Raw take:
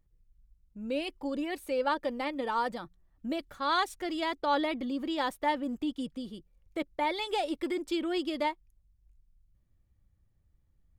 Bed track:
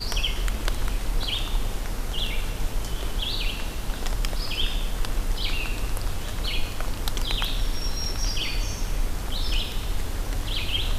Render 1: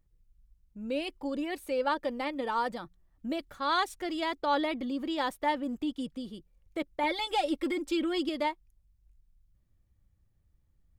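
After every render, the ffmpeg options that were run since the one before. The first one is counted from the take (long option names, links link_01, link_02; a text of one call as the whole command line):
ffmpeg -i in.wav -filter_complex "[0:a]asettb=1/sr,asplit=3[link_01][link_02][link_03];[link_01]atrim=end=7.034[link_04];[link_02]atrim=start=7.03:end=8.29,asetpts=PTS-STARTPTS,afade=type=in:duration=0.004:curve=qsin,afade=type=out:start_time=1.256:duration=0.004:curve=qsin,aecho=1:1:3.7:0.72,atrim=end_sample=55566[link_05];[link_03]atrim=start=8.286[link_06];[link_04][link_05]acrossfade=duration=0.004:curve1=hsin:curve2=qsin[link_07];[link_07][link_06]acrossfade=duration=0.004:curve1=qsin:curve2=hsin" out.wav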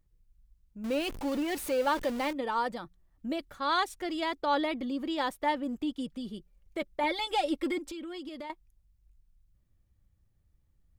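ffmpeg -i in.wav -filter_complex "[0:a]asettb=1/sr,asplit=3[link_01][link_02][link_03];[link_01]atrim=end=0.844[link_04];[link_02]atrim=start=0.84:end=2.33,asetpts=PTS-STARTPTS,afade=type=in:duration=0.004:curve=qsin,afade=type=out:start_time=1.486:duration=0.004:curve=qsin,aeval=exprs='val(0)+0.5*0.0168*sgn(val(0))':channel_layout=same[link_05];[link_03]atrim=start=2.326[link_06];[link_04][link_05]acrossfade=duration=0.004:curve1=hsin:curve2=qsin[link_07];[link_07][link_06]acrossfade=duration=0.004:curve1=qsin:curve2=hsin,asettb=1/sr,asplit=3[link_08][link_09][link_10];[link_08]atrim=end=6.104[link_11];[link_09]atrim=start=6.1:end=7.01,asetpts=PTS-STARTPTS,afade=type=in:duration=0.004:curve=qsin,afade=type=out:start_time=0.906:duration=0.004:curve=qsin,aecho=1:1:5:0.47,atrim=end_sample=40131[link_12];[link_10]atrim=start=7.006[link_13];[link_11][link_12]acrossfade=duration=0.004:curve1=hsin:curve2=qsin[link_14];[link_14][link_13]acrossfade=duration=0.004:curve1=qsin:curve2=hsin,asettb=1/sr,asplit=3[link_15][link_16][link_17];[link_15]atrim=end=7.784[link_18];[link_16]atrim=start=7.78:end=8.5,asetpts=PTS-STARTPTS,afade=type=in:duration=0.004:curve=qsin,afade=type=out:start_time=0.716:duration=0.004:curve=qsin,acompressor=threshold=-38dB:ratio=6:attack=3.2:release=140:knee=1:detection=peak[link_19];[link_17]atrim=start=8.496[link_20];[link_18][link_19]acrossfade=duration=0.004:curve1=hsin:curve2=qsin[link_21];[link_21][link_20]acrossfade=duration=0.004:curve1=qsin:curve2=hsin" out.wav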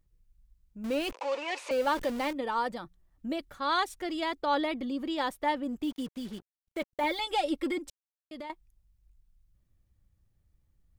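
ffmpeg -i in.wav -filter_complex "[0:a]asettb=1/sr,asplit=3[link_01][link_02][link_03];[link_01]atrim=end=1.124[link_04];[link_02]atrim=start=1.12:end=1.71,asetpts=PTS-STARTPTS,afade=type=in:duration=0.004:curve=qsin,afade=type=out:start_time=0.586:duration=0.004:curve=qsin,highpass=frequency=480:width=0.5412,highpass=frequency=480:width=1.3066,equalizer=frequency=520:width_type=q:width=4:gain=7,equalizer=frequency=1000:width_type=q:width=4:gain=9,equalizer=frequency=2500:width_type=q:width=4:gain=9,lowpass=frequency=7100:width=0.5412,lowpass=frequency=7100:width=1.3066[link_05];[link_03]atrim=start=1.706[link_06];[link_04][link_05]acrossfade=duration=0.004:curve1=hsin:curve2=qsin[link_07];[link_07][link_06]acrossfade=duration=0.004:curve1=qsin:curve2=hsin,asettb=1/sr,asplit=3[link_08][link_09][link_10];[link_08]atrim=end=5.834[link_11];[link_09]atrim=start=5.83:end=7.19,asetpts=PTS-STARTPTS,afade=type=in:duration=0.004:curve=qsin,afade=type=out:start_time=1.356:duration=0.004:curve=qsin,acrusher=bits=7:mix=0:aa=0.5[link_12];[link_10]atrim=start=7.186[link_13];[link_11][link_12]acrossfade=duration=0.004:curve1=hsin:curve2=qsin[link_14];[link_14][link_13]acrossfade=duration=0.004:curve1=qsin:curve2=hsin,asplit=3[link_15][link_16][link_17];[link_15]atrim=end=7.9,asetpts=PTS-STARTPTS,afade=type=out:start_time=7.896:duration=0.004:curve=hsin[link_18];[link_16]atrim=start=7.9:end=8.31,asetpts=PTS-STARTPTS,volume=0[link_19];[link_17]atrim=start=8.31,asetpts=PTS-STARTPTS,afade=type=in:duration=0.004:curve=hsin[link_20];[link_18][link_19][link_20]concat=n=3:v=0:a=1" out.wav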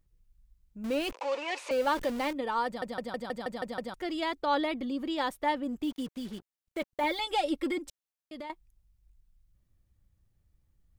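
ffmpeg -i in.wav -filter_complex "[0:a]asplit=9[link_01][link_02][link_03][link_04][link_05][link_06][link_07][link_08][link_09];[link_01]atrim=end=2.822[link_10];[link_02]atrim=start=2.658:end=2.822[link_11];[link_03]atrim=start=2.658:end=2.822[link_12];[link_04]atrim=start=2.658:end=2.822[link_13];[link_05]atrim=start=2.658:end=2.822[link_14];[link_06]atrim=start=2.658:end=2.822[link_15];[link_07]atrim=start=2.658:end=2.822[link_16];[link_08]atrim=start=2.658:end=2.822[link_17];[link_09]atrim=start=3.938[link_18];[link_10][link_11]acrossfade=duration=0.004:curve1=hsin:curve2=hsin[link_19];[link_19][link_12]acrossfade=duration=0.004:curve1=hsin:curve2=hsin[link_20];[link_20][link_13]acrossfade=duration=0.004:curve1=hsin:curve2=hsin[link_21];[link_21][link_14]acrossfade=duration=0.004:curve1=hsin:curve2=hsin[link_22];[link_22][link_15]acrossfade=duration=0.004:curve1=hsin:curve2=hsin[link_23];[link_23][link_16]acrossfade=duration=0.004:curve1=hsin:curve2=hsin[link_24];[link_24][link_17]acrossfade=duration=0.004:curve1=hsin:curve2=hsin[link_25];[link_25][link_18]acrossfade=duration=0.004:curve1=hsin:curve2=hsin" out.wav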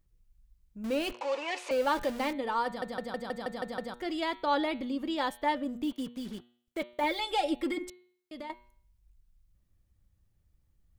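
ffmpeg -i in.wav -af "bandreject=frequency=120.4:width_type=h:width=4,bandreject=frequency=240.8:width_type=h:width=4,bandreject=frequency=361.2:width_type=h:width=4,bandreject=frequency=481.6:width_type=h:width=4,bandreject=frequency=602:width_type=h:width=4,bandreject=frequency=722.4:width_type=h:width=4,bandreject=frequency=842.8:width_type=h:width=4,bandreject=frequency=963.2:width_type=h:width=4,bandreject=frequency=1083.6:width_type=h:width=4,bandreject=frequency=1204:width_type=h:width=4,bandreject=frequency=1324.4:width_type=h:width=4,bandreject=frequency=1444.8:width_type=h:width=4,bandreject=frequency=1565.2:width_type=h:width=4,bandreject=frequency=1685.6:width_type=h:width=4,bandreject=frequency=1806:width_type=h:width=4,bandreject=frequency=1926.4:width_type=h:width=4,bandreject=frequency=2046.8:width_type=h:width=4,bandreject=frequency=2167.2:width_type=h:width=4,bandreject=frequency=2287.6:width_type=h:width=4,bandreject=frequency=2408:width_type=h:width=4,bandreject=frequency=2528.4:width_type=h:width=4,bandreject=frequency=2648.8:width_type=h:width=4,bandreject=frequency=2769.2:width_type=h:width=4,bandreject=frequency=2889.6:width_type=h:width=4,bandreject=frequency=3010:width_type=h:width=4,bandreject=frequency=3130.4:width_type=h:width=4,bandreject=frequency=3250.8:width_type=h:width=4,bandreject=frequency=3371.2:width_type=h:width=4,bandreject=frequency=3491.6:width_type=h:width=4,bandreject=frequency=3612:width_type=h:width=4,bandreject=frequency=3732.4:width_type=h:width=4,bandreject=frequency=3852.8:width_type=h:width=4,bandreject=frequency=3973.2:width_type=h:width=4,bandreject=frequency=4093.6:width_type=h:width=4,bandreject=frequency=4214:width_type=h:width=4,bandreject=frequency=4334.4:width_type=h:width=4,bandreject=frequency=4454.8:width_type=h:width=4" out.wav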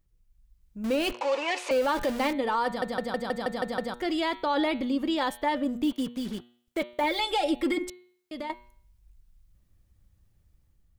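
ffmpeg -i in.wav -af "dynaudnorm=framelen=260:gausssize=5:maxgain=6dB,alimiter=limit=-18dB:level=0:latency=1:release=41" out.wav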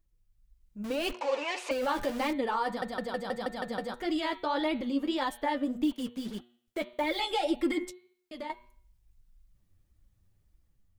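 ffmpeg -i in.wav -af "flanger=delay=2.8:depth=8.1:regen=26:speed=1.7:shape=sinusoidal" out.wav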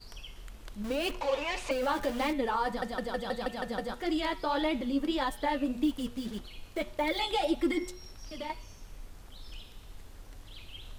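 ffmpeg -i in.wav -i bed.wav -filter_complex "[1:a]volume=-20.5dB[link_01];[0:a][link_01]amix=inputs=2:normalize=0" out.wav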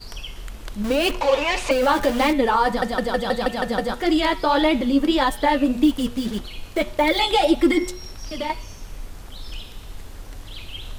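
ffmpeg -i in.wav -af "volume=11.5dB" out.wav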